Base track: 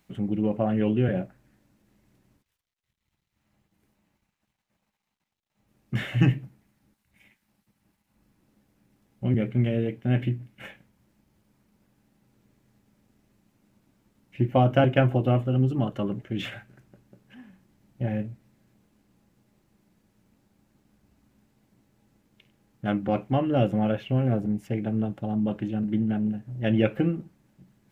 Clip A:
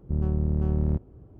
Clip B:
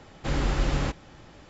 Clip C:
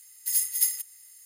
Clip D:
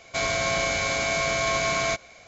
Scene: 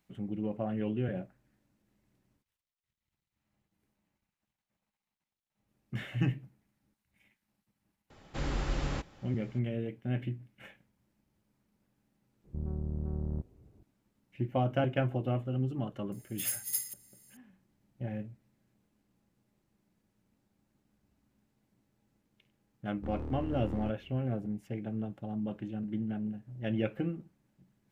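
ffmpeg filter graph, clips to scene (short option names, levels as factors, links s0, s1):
-filter_complex "[1:a]asplit=2[s0][s1];[0:a]volume=0.335[s2];[s0]lowpass=1200[s3];[3:a]acrusher=bits=6:mode=log:mix=0:aa=0.000001[s4];[s1]aeval=exprs='0.0708*(abs(mod(val(0)/0.0708+3,4)-2)-1)':c=same[s5];[2:a]atrim=end=1.49,asetpts=PTS-STARTPTS,volume=0.422,afade=t=in:d=0.004:c=hsin,afade=t=out:st=1.486:d=0.004:c=hsin,adelay=357210S[s6];[s3]atrim=end=1.39,asetpts=PTS-STARTPTS,volume=0.299,afade=t=in:d=0.004:c=hsin,afade=t=out:st=1.386:d=0.004:c=hsin,adelay=12440[s7];[s4]atrim=end=1.25,asetpts=PTS-STARTPTS,volume=0.335,afade=t=in:d=0.004:c=hsin,afade=t=out:st=1.246:d=0.004:c=hsin,adelay=16120[s8];[s5]atrim=end=1.39,asetpts=PTS-STARTPTS,volume=0.316,afade=t=in:d=0.004:c=hsin,afade=t=out:st=1.386:d=0.004:c=hsin,adelay=22930[s9];[s2][s6][s7][s8][s9]amix=inputs=5:normalize=0"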